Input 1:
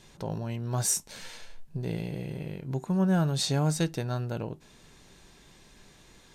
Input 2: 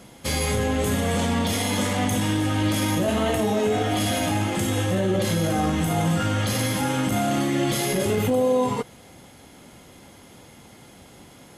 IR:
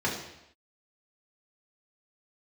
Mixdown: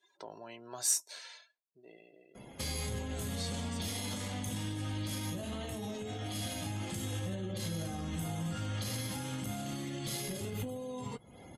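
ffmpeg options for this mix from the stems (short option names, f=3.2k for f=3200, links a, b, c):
-filter_complex "[0:a]highpass=500,aecho=1:1:3:0.33,volume=-3dB,afade=t=out:st=1.11:d=0.59:silence=0.298538[a];[1:a]alimiter=limit=-22.5dB:level=0:latency=1:release=231,adelay=2350,volume=-3.5dB[b];[a][b]amix=inputs=2:normalize=0,afftdn=nr=23:nf=-56,adynamicequalizer=threshold=0.00126:dfrequency=4300:dqfactor=3.7:tfrequency=4300:tqfactor=3.7:attack=5:release=100:ratio=0.375:range=2:mode=boostabove:tftype=bell,acrossover=split=190|3000[c][d][e];[d]acompressor=threshold=-43dB:ratio=4[f];[c][f][e]amix=inputs=3:normalize=0"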